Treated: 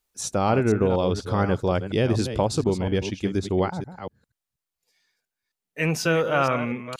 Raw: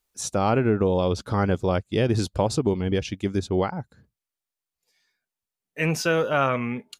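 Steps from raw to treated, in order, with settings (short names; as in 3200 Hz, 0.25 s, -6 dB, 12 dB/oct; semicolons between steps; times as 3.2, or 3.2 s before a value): reverse delay 0.24 s, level -10 dB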